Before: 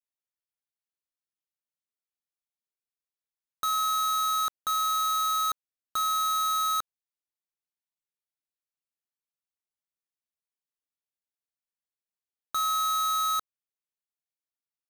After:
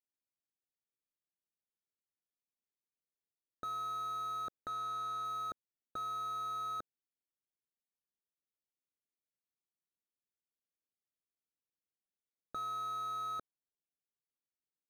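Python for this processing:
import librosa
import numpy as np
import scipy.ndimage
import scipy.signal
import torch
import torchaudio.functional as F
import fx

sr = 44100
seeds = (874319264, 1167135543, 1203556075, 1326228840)

y = fx.wiener(x, sr, points=41)
y = np.convolve(y, np.full(43, 1.0 / 43))[:len(y)]
y = fx.low_shelf(y, sr, hz=180.0, db=-11.0)
y = fx.doppler_dist(y, sr, depth_ms=0.11, at=(4.6, 5.25))
y = y * 10.0 ** (6.0 / 20.0)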